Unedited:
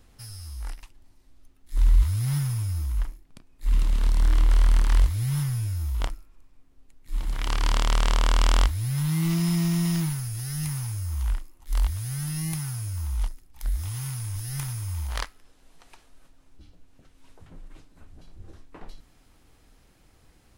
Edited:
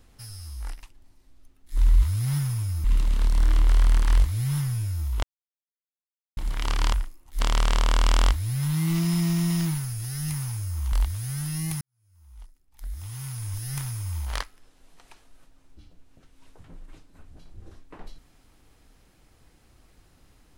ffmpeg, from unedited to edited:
-filter_complex "[0:a]asplit=8[a][b][c][d][e][f][g][h];[a]atrim=end=2.842[i];[b]atrim=start=3.658:end=6.05,asetpts=PTS-STARTPTS,afade=t=out:st=2.388:d=0.004:c=hsin[j];[c]atrim=start=6.05:end=7.19,asetpts=PTS-STARTPTS,volume=0[k];[d]atrim=start=7.19:end=7.752,asetpts=PTS-STARTPTS,afade=t=in:d=0.004:c=hsin[l];[e]atrim=start=11.268:end=11.742[m];[f]atrim=start=7.748:end=11.272[n];[g]atrim=start=11.738:end=12.63,asetpts=PTS-STARTPTS,afade=t=out:st=0.888:d=0.004:c=hsin[o];[h]atrim=start=12.63,asetpts=PTS-STARTPTS,afade=t=in:d=1.71:c=qua[p];[j][k][l]concat=n=3:v=0:a=1[q];[i][q]acrossfade=d=0.004:c1=hsin:c2=hsin[r];[r][m]acrossfade=d=0.004:c1=hsin:c2=hsin[s];[s][n]acrossfade=d=0.004:c1=hsin:c2=hsin[t];[o][p]concat=n=2:v=0:a=1[u];[t][u]acrossfade=d=0.004:c1=hsin:c2=hsin"

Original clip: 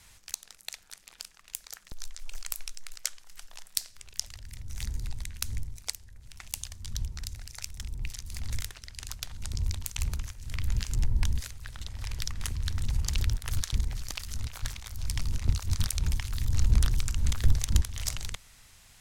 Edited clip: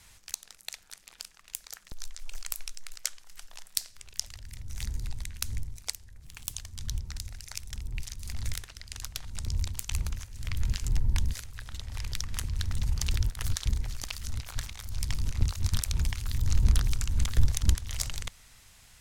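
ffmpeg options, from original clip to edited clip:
-filter_complex "[0:a]asplit=3[a][b][c];[a]atrim=end=6.234[d];[b]atrim=start=6.23:end=6.6,asetpts=PTS-STARTPTS,asetrate=54243,aresample=44100[e];[c]atrim=start=6.596[f];[d][e]acrossfade=d=0.004:c1=hsin:c2=hsin[g];[g][f]acrossfade=d=0.004:c1=hsin:c2=hsin"

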